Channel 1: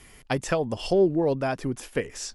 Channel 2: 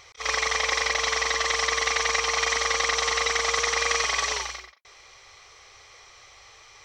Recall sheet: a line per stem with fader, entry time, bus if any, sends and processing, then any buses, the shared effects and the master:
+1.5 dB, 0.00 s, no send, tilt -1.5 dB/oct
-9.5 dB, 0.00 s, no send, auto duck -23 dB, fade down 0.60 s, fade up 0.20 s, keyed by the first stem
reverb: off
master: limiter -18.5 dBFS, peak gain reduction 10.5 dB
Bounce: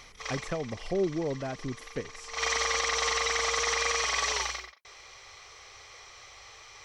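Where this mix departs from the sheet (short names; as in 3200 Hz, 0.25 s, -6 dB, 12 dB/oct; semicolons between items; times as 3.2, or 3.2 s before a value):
stem 1 +1.5 dB -> -10.0 dB; stem 2 -9.5 dB -> +0.5 dB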